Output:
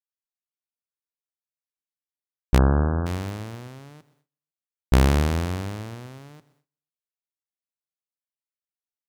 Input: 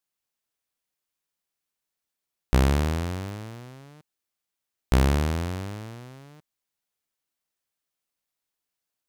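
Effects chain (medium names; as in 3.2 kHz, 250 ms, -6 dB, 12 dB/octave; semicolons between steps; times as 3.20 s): feedback delay 125 ms, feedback 52%, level -19 dB; gate with hold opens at -59 dBFS; 2.58–3.06 s: brick-wall FIR low-pass 1.7 kHz; trim +3 dB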